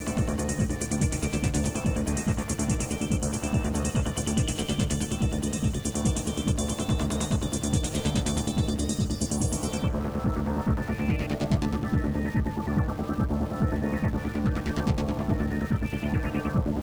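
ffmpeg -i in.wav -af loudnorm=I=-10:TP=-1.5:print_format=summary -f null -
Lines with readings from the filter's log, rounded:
Input Integrated:    -27.9 LUFS
Input True Peak:     -12.9 dBTP
Input LRA:             0.5 LU
Input Threshold:     -37.9 LUFS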